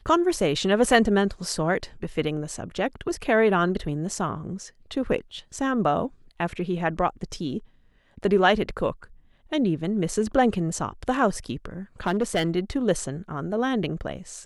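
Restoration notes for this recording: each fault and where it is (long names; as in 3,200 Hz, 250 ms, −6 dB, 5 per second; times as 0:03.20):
0:12.06–0:12.50: clipping −17.5 dBFS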